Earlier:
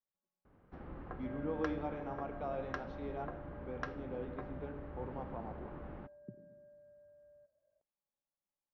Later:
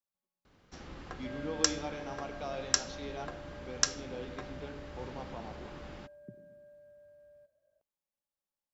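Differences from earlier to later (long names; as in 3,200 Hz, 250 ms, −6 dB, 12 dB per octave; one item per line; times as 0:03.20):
first sound: remove high-frequency loss of the air 200 metres
second sound +3.5 dB
master: remove low-pass filter 1,400 Hz 12 dB per octave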